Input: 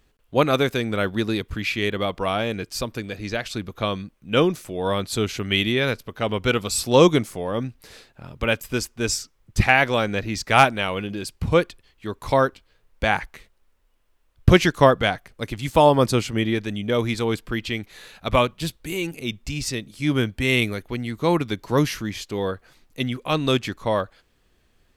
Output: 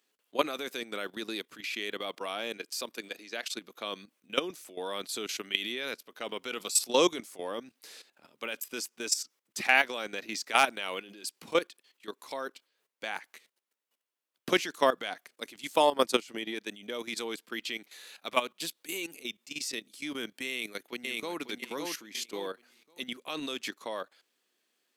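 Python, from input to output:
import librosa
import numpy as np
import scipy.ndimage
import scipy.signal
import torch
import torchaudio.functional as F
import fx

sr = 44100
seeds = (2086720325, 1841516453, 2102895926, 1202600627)

y = fx.highpass(x, sr, hz=180.0, slope=12, at=(2.57, 3.46))
y = fx.transient(y, sr, attack_db=10, sustain_db=-8, at=(15.82, 16.72))
y = fx.echo_throw(y, sr, start_s=20.49, length_s=0.9, ms=550, feedback_pct=25, wet_db=-3.5)
y = scipy.signal.sosfilt(scipy.signal.butter(4, 250.0, 'highpass', fs=sr, output='sos'), y)
y = fx.high_shelf(y, sr, hz=2400.0, db=10.5)
y = fx.level_steps(y, sr, step_db=14)
y = F.gain(torch.from_numpy(y), -7.5).numpy()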